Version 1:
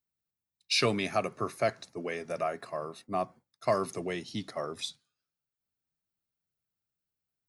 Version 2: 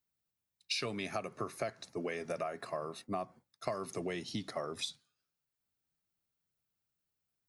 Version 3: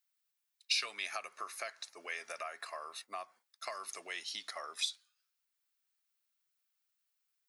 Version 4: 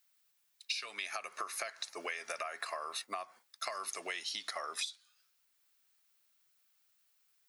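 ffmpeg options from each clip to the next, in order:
ffmpeg -i in.wav -af "acompressor=threshold=-35dB:ratio=10,volume=1.5dB" out.wav
ffmpeg -i in.wav -af "highpass=1300,volume=4dB" out.wav
ffmpeg -i in.wav -af "acompressor=threshold=-45dB:ratio=10,volume=9.5dB" out.wav

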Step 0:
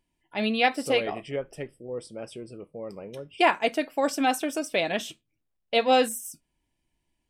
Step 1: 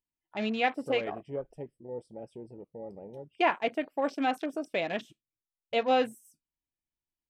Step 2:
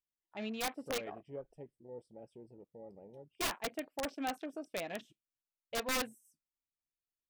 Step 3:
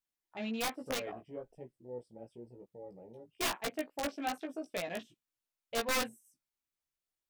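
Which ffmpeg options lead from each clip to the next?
ffmpeg -i in.wav -filter_complex "[0:a]afwtdn=0.0141,acrossover=split=3300[link_01][link_02];[link_02]acompressor=threshold=-43dB:ratio=4:attack=1:release=60[link_03];[link_01][link_03]amix=inputs=2:normalize=0,volume=-4.5dB" out.wav
ffmpeg -i in.wav -af "aeval=exprs='(mod(9.44*val(0)+1,2)-1)/9.44':channel_layout=same,volume=-9dB" out.wav
ffmpeg -i in.wav -af "flanger=delay=15.5:depth=2:speed=1.1,volume=5dB" out.wav

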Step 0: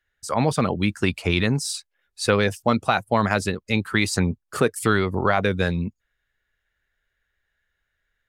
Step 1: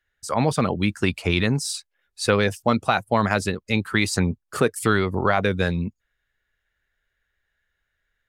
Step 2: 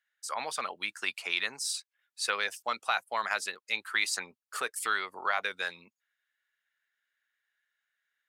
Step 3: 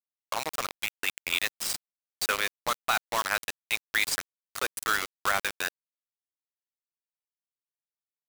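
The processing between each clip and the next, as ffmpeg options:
ffmpeg -i in.wav -af anull out.wav
ffmpeg -i in.wav -af "highpass=1100,volume=-4.5dB" out.wav
ffmpeg -i in.wav -af "afftdn=noise_reduction=23:noise_floor=-42,acrusher=bits=4:mix=0:aa=0.000001,volume=2.5dB" out.wav

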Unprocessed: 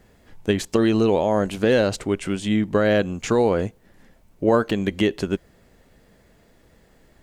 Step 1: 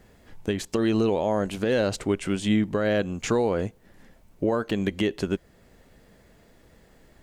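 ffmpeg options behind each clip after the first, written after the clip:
ffmpeg -i in.wav -af "alimiter=limit=-13.5dB:level=0:latency=1:release=400" out.wav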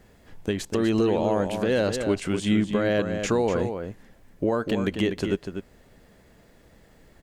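ffmpeg -i in.wav -filter_complex "[0:a]asplit=2[link_01][link_02];[link_02]adelay=244.9,volume=-7dB,highshelf=frequency=4000:gain=-5.51[link_03];[link_01][link_03]amix=inputs=2:normalize=0" out.wav

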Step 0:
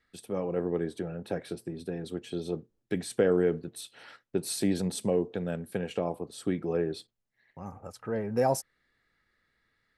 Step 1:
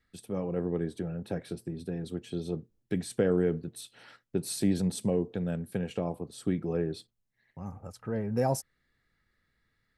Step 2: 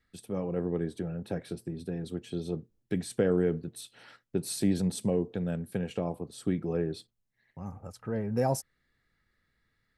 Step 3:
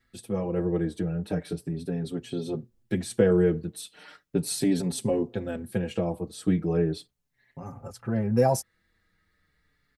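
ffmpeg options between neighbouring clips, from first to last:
ffmpeg -i in.wav -af "bass=frequency=250:gain=8,treble=frequency=4000:gain=2,volume=-3.5dB" out.wav
ffmpeg -i in.wav -af anull out.wav
ffmpeg -i in.wav -filter_complex "[0:a]asplit=2[link_01][link_02];[link_02]adelay=5.5,afreqshift=-0.37[link_03];[link_01][link_03]amix=inputs=2:normalize=1,volume=7.5dB" out.wav

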